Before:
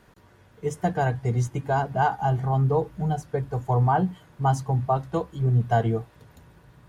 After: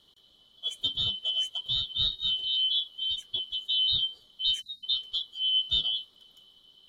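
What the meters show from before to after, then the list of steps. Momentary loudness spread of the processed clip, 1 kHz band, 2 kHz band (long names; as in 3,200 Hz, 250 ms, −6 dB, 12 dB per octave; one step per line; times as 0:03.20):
8 LU, below −35 dB, below −25 dB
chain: band-splitting scrambler in four parts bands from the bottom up 2413
time-frequency box erased 0:04.61–0:04.83, 290–3,700 Hz
level −6 dB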